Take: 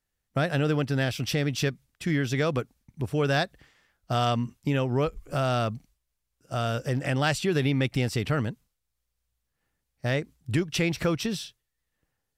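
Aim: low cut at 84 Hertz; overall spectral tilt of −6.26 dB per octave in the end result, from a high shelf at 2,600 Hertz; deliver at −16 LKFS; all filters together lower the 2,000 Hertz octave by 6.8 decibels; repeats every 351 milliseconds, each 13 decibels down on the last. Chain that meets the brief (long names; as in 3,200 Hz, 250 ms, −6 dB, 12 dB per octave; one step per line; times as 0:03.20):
high-pass filter 84 Hz
parametric band 2,000 Hz −7.5 dB
high-shelf EQ 2,600 Hz −3.5 dB
repeating echo 351 ms, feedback 22%, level −13 dB
level +13 dB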